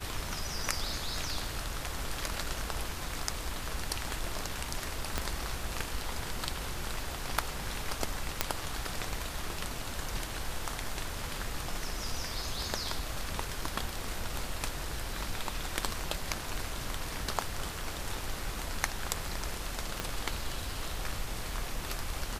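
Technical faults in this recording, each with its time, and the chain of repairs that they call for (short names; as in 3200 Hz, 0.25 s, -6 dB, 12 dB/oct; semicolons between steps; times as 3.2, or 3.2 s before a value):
5.18 pop -14 dBFS
8.41 pop -7 dBFS
20 pop -16 dBFS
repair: de-click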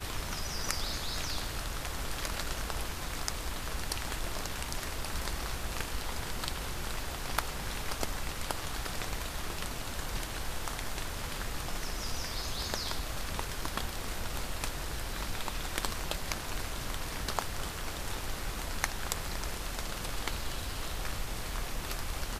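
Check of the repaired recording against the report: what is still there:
5.18 pop
20 pop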